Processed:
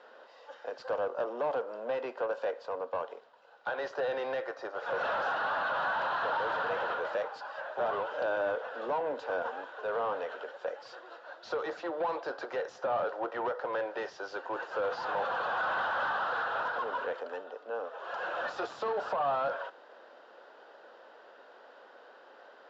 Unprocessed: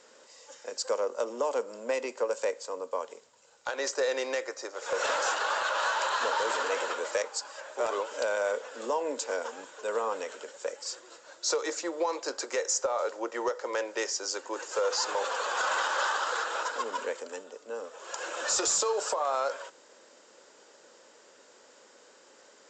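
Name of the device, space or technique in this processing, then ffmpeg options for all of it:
overdrive pedal into a guitar cabinet: -filter_complex "[0:a]asplit=2[link_01][link_02];[link_02]highpass=frequency=720:poles=1,volume=19dB,asoftclip=type=tanh:threshold=-18dB[link_03];[link_01][link_03]amix=inputs=2:normalize=0,lowpass=frequency=1700:poles=1,volume=-6dB,highpass=110,equalizer=frequency=720:width_type=q:width=4:gain=8,equalizer=frequency=1500:width_type=q:width=4:gain=4,equalizer=frequency=2200:width_type=q:width=4:gain=-8,lowpass=frequency=3900:width=0.5412,lowpass=frequency=3900:width=1.3066,asettb=1/sr,asplit=3[link_04][link_05][link_06];[link_04]atrim=end=1.264[link_07];[link_05]atrim=start=1.26:end=2.59,asetpts=PTS-STARTPTS,afade=type=in:duration=0.004:curve=qsin,afade=type=out:start_time=1.326:duration=0.004:curve=qsin,highpass=160[link_08];[link_06]atrim=start=2.586[link_09];[link_07][link_08]acrossfade=duration=0.004:curve1=hsin:curve2=qsin[link_10];[link_10][link_09]acrossfade=duration=0.004:curve1=qsin:curve2=hsin,volume=-7.5dB"

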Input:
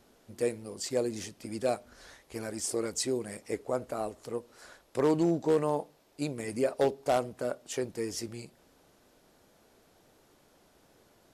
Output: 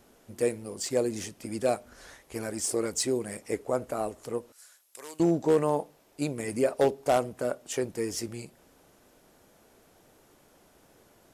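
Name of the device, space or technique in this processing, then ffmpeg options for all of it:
exciter from parts: -filter_complex "[0:a]asplit=2[link_01][link_02];[link_02]highpass=frequency=3900:width=0.5412,highpass=frequency=3900:width=1.3066,asoftclip=type=tanh:threshold=-36.5dB,volume=-8dB[link_03];[link_01][link_03]amix=inputs=2:normalize=0,asettb=1/sr,asplit=3[link_04][link_05][link_06];[link_04]atrim=end=4.524[link_07];[link_05]atrim=start=4.52:end=5.2,asetpts=PTS-STARTPTS,afade=type=in:duration=0.004:curve=qsin,afade=type=out:start_time=0.676:duration=0.004:curve=qsin,aderivative[link_08];[link_06]atrim=start=5.196[link_09];[link_07][link_08]acrossfade=duration=0.004:curve1=hsin:curve2=qsin[link_10];[link_10][link_09]acrossfade=duration=0.004:curve1=qsin:curve2=hsin,volume=3dB"

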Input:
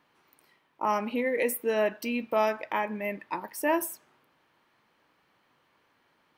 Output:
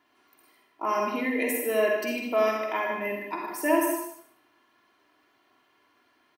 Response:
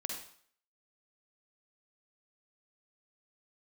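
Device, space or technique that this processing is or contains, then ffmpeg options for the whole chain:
microphone above a desk: -filter_complex "[0:a]highpass=frequency=100:poles=1,aecho=1:1:2.9:0.7[link_01];[1:a]atrim=start_sample=2205[link_02];[link_01][link_02]afir=irnorm=-1:irlink=0,asplit=2[link_03][link_04];[link_04]adelay=151.6,volume=-8dB,highshelf=frequency=4000:gain=-3.41[link_05];[link_03][link_05]amix=inputs=2:normalize=0"

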